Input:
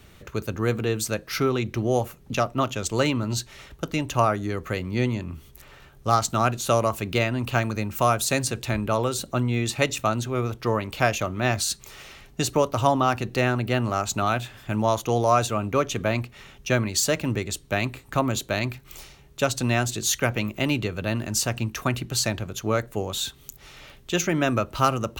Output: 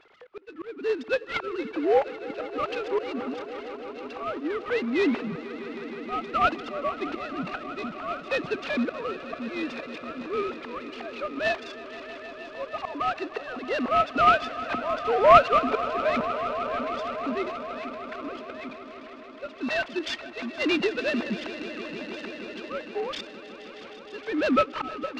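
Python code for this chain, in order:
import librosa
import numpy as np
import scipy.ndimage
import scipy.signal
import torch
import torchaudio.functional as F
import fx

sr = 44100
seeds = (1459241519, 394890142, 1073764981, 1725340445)

y = fx.sine_speech(x, sr)
y = fx.auto_swell(y, sr, attack_ms=581.0)
y = fx.echo_swell(y, sr, ms=157, loudest=5, wet_db=-17.0)
y = fx.noise_mod_delay(y, sr, seeds[0], noise_hz=1200.0, depth_ms=0.031)
y = y * librosa.db_to_amplitude(2.5)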